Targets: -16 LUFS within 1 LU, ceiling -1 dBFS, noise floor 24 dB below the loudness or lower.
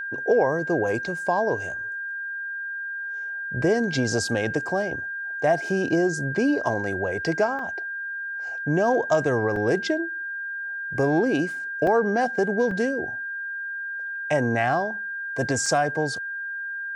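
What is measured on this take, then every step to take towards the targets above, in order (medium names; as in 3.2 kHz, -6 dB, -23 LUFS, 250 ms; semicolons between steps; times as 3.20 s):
dropouts 5; longest dropout 3.2 ms; steady tone 1.6 kHz; tone level -29 dBFS; loudness -25.0 LUFS; peak level -8.5 dBFS; loudness target -16.0 LUFS
-> interpolate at 7.59/9.56/11.87/12.71/15.66 s, 3.2 ms; band-stop 1.6 kHz, Q 30; trim +9 dB; peak limiter -1 dBFS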